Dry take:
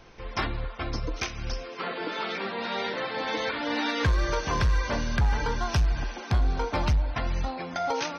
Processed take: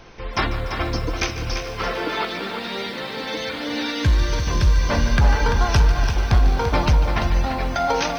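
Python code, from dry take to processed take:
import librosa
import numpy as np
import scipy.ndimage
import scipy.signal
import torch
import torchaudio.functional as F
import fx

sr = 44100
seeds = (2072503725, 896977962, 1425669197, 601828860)

y = fx.peak_eq(x, sr, hz=960.0, db=-9.5, octaves=2.8, at=(2.25, 4.89))
y = y + 10.0 ** (-7.5 / 20.0) * np.pad(y, (int(340 * sr / 1000.0), 0))[:len(y)]
y = fx.echo_crushed(y, sr, ms=147, feedback_pct=80, bits=8, wet_db=-13.5)
y = y * librosa.db_to_amplitude(7.0)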